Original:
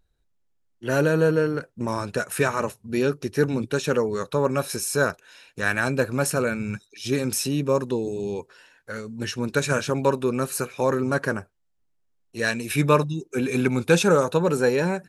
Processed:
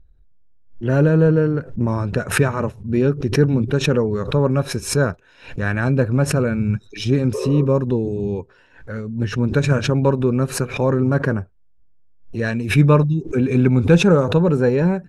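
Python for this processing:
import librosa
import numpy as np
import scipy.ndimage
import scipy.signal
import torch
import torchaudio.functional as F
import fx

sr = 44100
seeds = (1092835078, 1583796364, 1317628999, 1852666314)

y = fx.riaa(x, sr, side='playback')
y = fx.spec_repair(y, sr, seeds[0], start_s=7.37, length_s=0.25, low_hz=380.0, high_hz=1300.0, source='after')
y = fx.high_shelf(y, sr, hz=9500.0, db=-5.5)
y = fx.notch(y, sr, hz=4400.0, q=27.0)
y = fx.pre_swell(y, sr, db_per_s=130.0)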